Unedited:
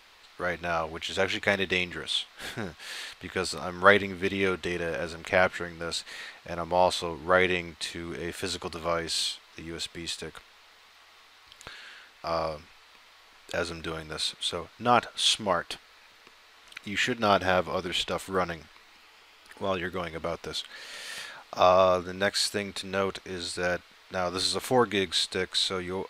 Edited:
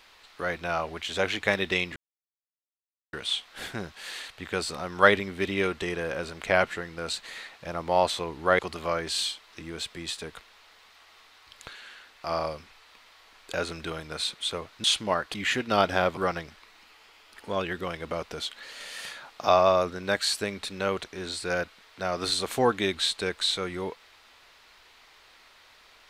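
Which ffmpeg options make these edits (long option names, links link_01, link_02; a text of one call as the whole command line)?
ffmpeg -i in.wav -filter_complex "[0:a]asplit=6[link_01][link_02][link_03][link_04][link_05][link_06];[link_01]atrim=end=1.96,asetpts=PTS-STARTPTS,afade=type=out:start_time=1.956:duration=0.004:curve=hsin,apad=pad_dur=1.17[link_07];[link_02]atrim=start=1.96:end=7.422,asetpts=PTS-STARTPTS,afade=type=in:duration=0.004:curve=hsin[link_08];[link_03]atrim=start=8.588:end=14.842[link_09];[link_04]atrim=start=15.228:end=15.732[link_10];[link_05]atrim=start=16.858:end=17.692[link_11];[link_06]atrim=start=18.298[link_12];[link_07][link_08]concat=n=2:v=0:a=1[link_13];[link_13][link_09]acrossfade=duration=0.004:curve1=hsin:curve2=hsin[link_14];[link_14][link_10]acrossfade=duration=0.004:curve1=hsin:curve2=hsin[link_15];[link_15][link_11]acrossfade=duration=0.004:curve1=hsin:curve2=hsin[link_16];[link_16][link_12]acrossfade=duration=0.004:curve1=hsin:curve2=hsin" out.wav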